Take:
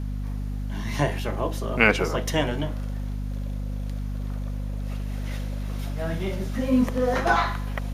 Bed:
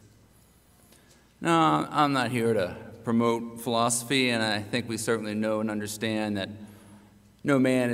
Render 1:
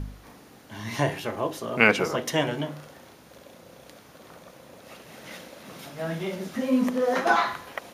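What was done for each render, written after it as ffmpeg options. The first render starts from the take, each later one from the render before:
-af "bandreject=f=50:t=h:w=4,bandreject=f=100:t=h:w=4,bandreject=f=150:t=h:w=4,bandreject=f=200:t=h:w=4,bandreject=f=250:t=h:w=4,bandreject=f=300:t=h:w=4,bandreject=f=350:t=h:w=4,bandreject=f=400:t=h:w=4"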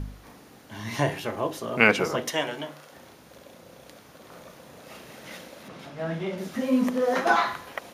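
-filter_complex "[0:a]asettb=1/sr,asplit=3[s0][s1][s2];[s0]atrim=end=2.304[s3];[s1]atrim=start=2.3:end=2.93,asetpts=PTS-STARTPTS,afade=t=in:d=0.004:c=qsin,afade=t=out:st=0.626:d=0.004:c=qsin,highpass=f=560:p=1[s4];[s2]atrim=start=2.926[s5];[s3][s4]acrossfade=d=0.004:c1=hsin:c2=qsin[s6];[s6][s5]acrossfade=d=0.004:c1=qsin:c2=hsin,asettb=1/sr,asplit=3[s7][s8][s9];[s7]atrim=end=4.284[s10];[s8]atrim=start=4.28:end=5.13,asetpts=PTS-STARTPTS,afade=t=in:d=0.004:c=qsin,afade=t=out:st=0.846:d=0.004:c=qsin,asplit=2[s11][s12];[s12]adelay=34,volume=0.668[s13];[s11][s13]amix=inputs=2:normalize=0,atrim=end_sample=37485[s14];[s9]atrim=start=5.126[s15];[s10][s14]acrossfade=d=0.004:c1=hsin:c2=qsin[s16];[s16][s15]acrossfade=d=0.004:c1=qsin:c2=hsin,asettb=1/sr,asplit=3[s17][s18][s19];[s17]atrim=end=5.684[s20];[s18]atrim=start=5.68:end=6.38,asetpts=PTS-STARTPTS,afade=t=in:d=0.004:c=qsin,afade=t=out:st=0.696:d=0.004:c=qsin,aemphasis=mode=reproduction:type=50fm[s21];[s19]atrim=start=6.376[s22];[s20][s21]acrossfade=d=0.004:c1=hsin:c2=qsin[s23];[s23][s22]acrossfade=d=0.004:c1=qsin:c2=hsin"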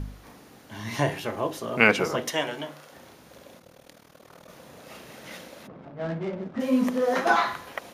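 -filter_complex "[0:a]asettb=1/sr,asplit=3[s0][s1][s2];[s0]atrim=end=3.594[s3];[s1]atrim=start=3.59:end=4.49,asetpts=PTS-STARTPTS,afade=t=in:d=0.004:c=qsin,afade=t=out:st=0.896:d=0.004:c=qsin,tremolo=f=39:d=0.857[s4];[s2]atrim=start=4.486[s5];[s3][s4]acrossfade=d=0.004:c1=hsin:c2=qsin[s6];[s6][s5]acrossfade=d=0.004:c1=qsin:c2=hsin,asplit=3[s7][s8][s9];[s7]afade=t=out:st=5.66:d=0.02[s10];[s8]adynamicsmooth=sensitivity=4:basefreq=660,afade=t=in:st=5.66:d=0.02,afade=t=out:st=6.59:d=0.02[s11];[s9]afade=t=in:st=6.59:d=0.02[s12];[s10][s11][s12]amix=inputs=3:normalize=0"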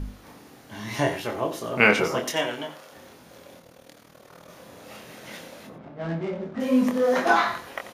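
-filter_complex "[0:a]asplit=2[s0][s1];[s1]adelay=24,volume=0.562[s2];[s0][s2]amix=inputs=2:normalize=0,aecho=1:1:89:0.211"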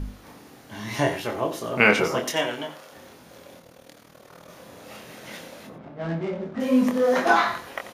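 -af "volume=1.12,alimiter=limit=0.794:level=0:latency=1"

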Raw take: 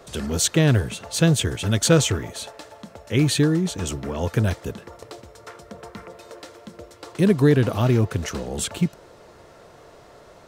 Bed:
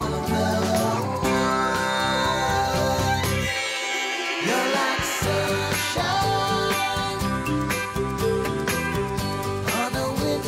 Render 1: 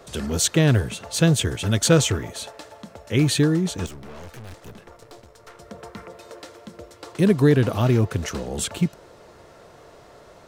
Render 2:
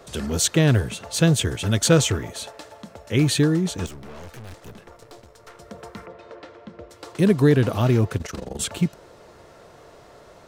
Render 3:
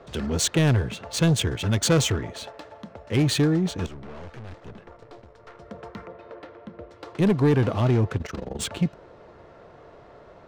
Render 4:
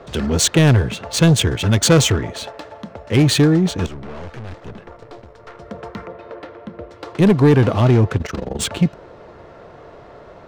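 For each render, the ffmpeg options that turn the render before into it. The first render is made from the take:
-filter_complex "[0:a]asettb=1/sr,asplit=3[s0][s1][s2];[s0]atrim=end=3.864[s3];[s1]atrim=start=3.86:end=5.6,asetpts=PTS-STARTPTS,afade=t=in:d=0.004:c=qsin,afade=t=out:st=1.736:d=0.004:c=qsin,aeval=exprs='(tanh(79.4*val(0)+0.75)-tanh(0.75))/79.4':c=same[s4];[s2]atrim=start=5.596[s5];[s3][s4]acrossfade=d=0.004:c1=hsin:c2=qsin[s6];[s6][s5]acrossfade=d=0.004:c1=qsin:c2=hsin"
-filter_complex "[0:a]asettb=1/sr,asplit=3[s0][s1][s2];[s0]atrim=end=6.064[s3];[s1]atrim=start=6.06:end=6.9,asetpts=PTS-STARTPTS,afade=t=in:d=0.004:c=qsin,afade=t=out:st=0.836:d=0.004:c=qsin,lowpass=2900[s4];[s2]atrim=start=6.896[s5];[s3][s4]acrossfade=d=0.004:c1=hsin:c2=qsin[s6];[s6][s5]acrossfade=d=0.004:c1=qsin:c2=hsin,asettb=1/sr,asplit=3[s7][s8][s9];[s7]atrim=end=8.174[s10];[s8]atrim=start=8.17:end=8.6,asetpts=PTS-STARTPTS,afade=t=in:d=0.004:c=qsin,afade=t=out:st=0.426:d=0.004:c=qsin,tremolo=f=23:d=0.857[s11];[s9]atrim=start=8.596[s12];[s10][s11]acrossfade=d=0.004:c1=hsin:c2=qsin[s13];[s13][s12]acrossfade=d=0.004:c1=qsin:c2=hsin"
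-af "adynamicsmooth=sensitivity=5:basefreq=2700,asoftclip=type=tanh:threshold=0.211"
-af "volume=2.37"

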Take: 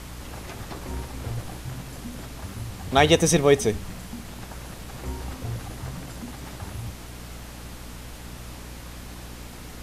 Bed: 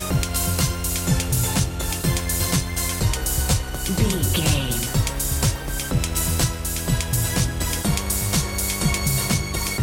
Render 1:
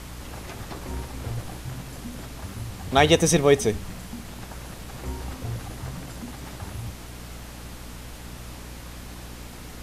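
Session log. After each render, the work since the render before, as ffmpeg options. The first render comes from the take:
-af anull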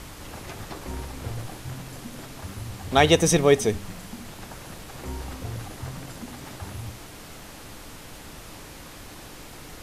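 -af "bandreject=f=60:t=h:w=4,bandreject=f=120:t=h:w=4,bandreject=f=180:t=h:w=4,bandreject=f=240:t=h:w=4"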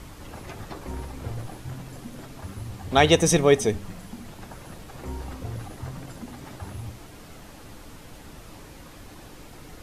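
-af "afftdn=nr=6:nf=-43"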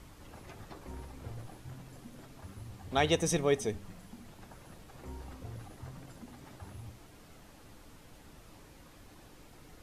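-af "volume=0.299"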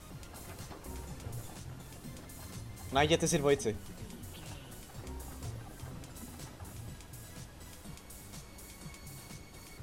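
-filter_complex "[1:a]volume=0.0398[s0];[0:a][s0]amix=inputs=2:normalize=0"

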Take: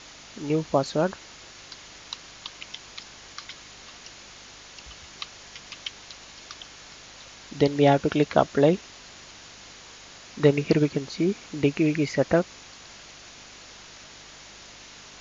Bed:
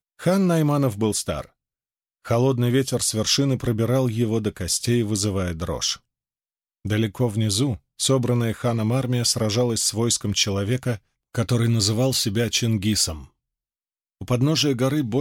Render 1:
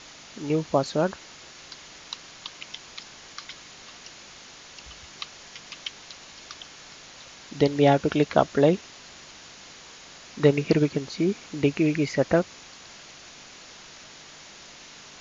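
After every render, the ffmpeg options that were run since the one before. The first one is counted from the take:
-af "bandreject=f=50:t=h:w=4,bandreject=f=100:t=h:w=4"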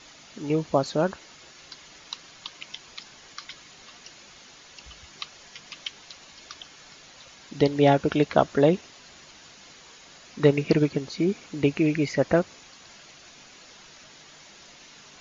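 -af "afftdn=nr=6:nf=-47"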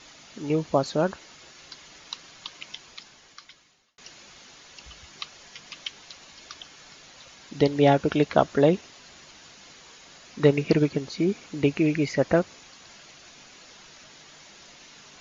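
-filter_complex "[0:a]asplit=2[s0][s1];[s0]atrim=end=3.98,asetpts=PTS-STARTPTS,afade=t=out:st=2.69:d=1.29[s2];[s1]atrim=start=3.98,asetpts=PTS-STARTPTS,afade=t=in:d=0.004:c=hsin[s3];[s2][s3]concat=n=2:v=0:a=1"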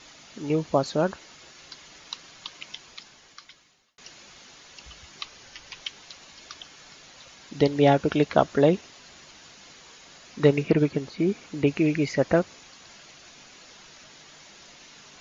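-filter_complex "[0:a]asettb=1/sr,asplit=3[s0][s1][s2];[s0]atrim=end=5.234[s3];[s1]atrim=start=5.23:end=5.81,asetpts=PTS-STARTPTS,afade=t=in:d=0.004:c=qsin,afade=t=out:st=0.576:d=0.004:c=qsin,afreqshift=-160[s4];[s2]atrim=start=5.806[s5];[s3][s4]acrossfade=d=0.004:c1=hsin:c2=qsin[s6];[s6][s5]acrossfade=d=0.004:c1=qsin:c2=hsin,asettb=1/sr,asplit=3[s7][s8][s9];[s7]atrim=end=10.634[s10];[s8]atrim=start=10.63:end=11.67,asetpts=PTS-STARTPTS,afade=t=in:d=0.004:c=qsin,afade=t=out:st=1.036:d=0.004:c=qsin,acrossover=split=3100[s11][s12];[s12]acompressor=threshold=0.00398:ratio=4:attack=1:release=60[s13];[s11][s13]amix=inputs=2:normalize=0[s14];[s9]atrim=start=11.666[s15];[s10][s14]acrossfade=d=0.004:c1=hsin:c2=qsin[s16];[s16][s15]acrossfade=d=0.004:c1=qsin:c2=hsin"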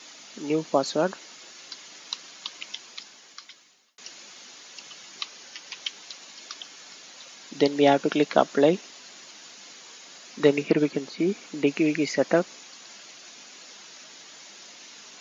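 -af "highpass=f=190:w=0.5412,highpass=f=190:w=1.3066,highshelf=f=3900:g=7"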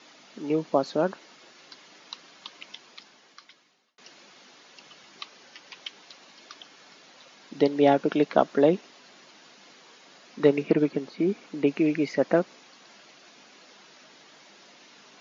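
-af "lowpass=f=6000:w=0.5412,lowpass=f=6000:w=1.3066,highshelf=f=2200:g=-9.5"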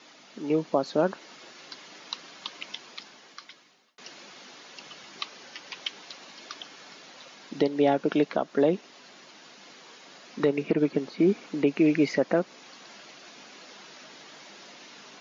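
-af "dynaudnorm=f=660:g=3:m=1.78,alimiter=limit=0.251:level=0:latency=1:release=331"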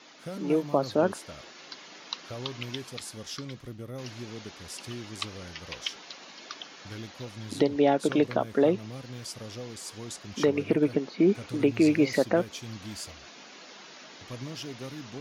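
-filter_complex "[1:a]volume=0.112[s0];[0:a][s0]amix=inputs=2:normalize=0"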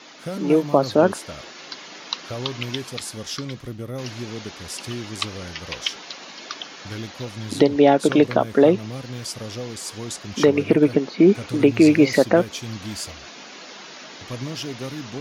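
-af "volume=2.51"

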